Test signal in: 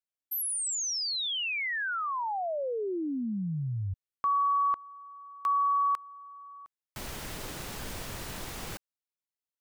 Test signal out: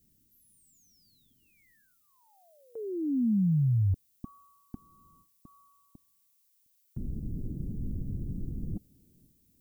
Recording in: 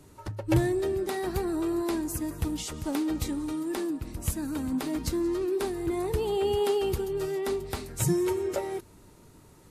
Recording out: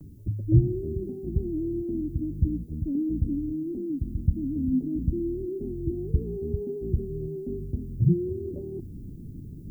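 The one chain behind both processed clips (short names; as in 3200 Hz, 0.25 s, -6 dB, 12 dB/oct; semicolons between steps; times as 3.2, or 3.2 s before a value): inverse Chebyshev low-pass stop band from 1200 Hz, stop band 70 dB; gate with hold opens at -49 dBFS, hold 0.458 s, range -21 dB; reverse; upward compressor, threshold -37 dBFS; reverse; added noise violet -77 dBFS; gain +7.5 dB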